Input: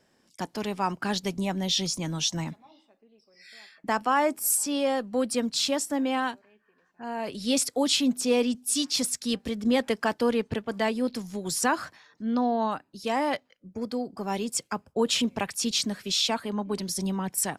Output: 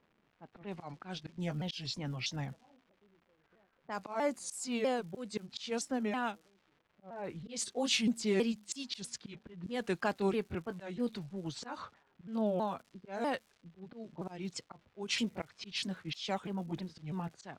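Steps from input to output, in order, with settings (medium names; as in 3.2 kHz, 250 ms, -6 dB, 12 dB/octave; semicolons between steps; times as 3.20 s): sawtooth pitch modulation -4.5 st, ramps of 323 ms; level-controlled noise filter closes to 510 Hz, open at -22.5 dBFS; slow attack 211 ms; crackle 320 per s -46 dBFS; level-controlled noise filter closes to 2 kHz, open at -29 dBFS; trim -6 dB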